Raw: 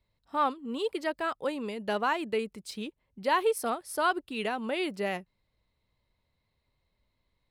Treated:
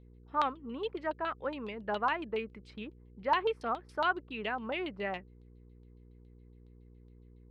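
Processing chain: mains buzz 60 Hz, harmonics 8, -50 dBFS -6 dB/octave; LFO low-pass saw down 7.2 Hz 880–3800 Hz; trim -6 dB

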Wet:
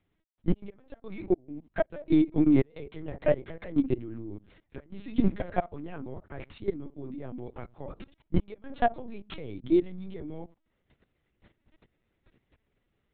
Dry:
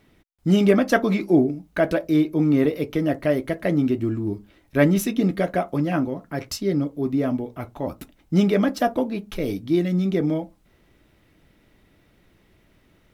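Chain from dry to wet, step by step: inverted gate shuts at -9 dBFS, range -29 dB; level held to a coarse grid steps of 19 dB; LPC vocoder at 8 kHz pitch kept

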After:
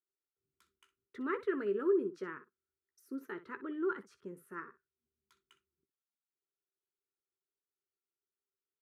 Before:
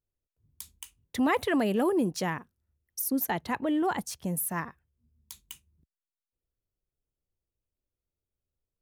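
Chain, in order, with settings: two resonant band-passes 730 Hz, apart 1.8 oct; early reflections 15 ms -10.5 dB, 62 ms -15 dB

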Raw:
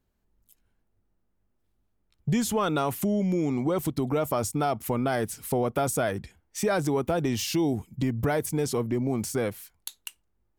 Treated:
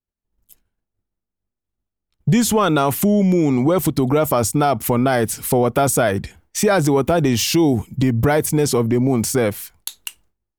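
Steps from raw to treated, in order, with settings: expander -58 dBFS; in parallel at 0 dB: peak limiter -25.5 dBFS, peak gain reduction 10 dB; on the sum: trim +6.5 dB

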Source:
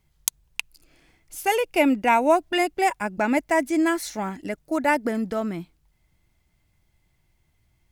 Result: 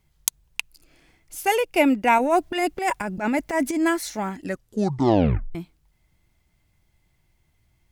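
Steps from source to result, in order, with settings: 2.18–3.88 s: transient shaper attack -12 dB, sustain +7 dB; 4.41 s: tape stop 1.14 s; trim +1 dB

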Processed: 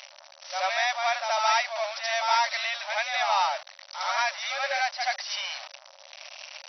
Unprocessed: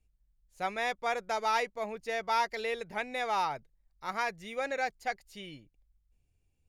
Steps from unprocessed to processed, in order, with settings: jump at every zero crossing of -31.5 dBFS; treble shelf 4.3 kHz +10.5 dB; reverse echo 78 ms -5 dB; FFT band-pass 540–6000 Hz; trim +2 dB

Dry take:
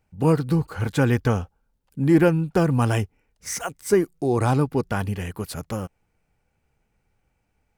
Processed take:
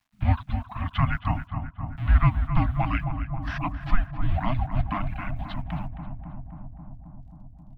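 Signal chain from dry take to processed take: in parallel at -10 dB: Schmitt trigger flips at -27.5 dBFS; on the sum: reverb removal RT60 1.5 s; mistuned SSB -390 Hz 300–3600 Hz; bit crusher 12-bit; elliptic band-stop 290–650 Hz, stop band 40 dB; on a send: filtered feedback delay 267 ms, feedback 81%, low-pass 1.5 kHz, level -8 dB; on the sum: trim +1.5 dB

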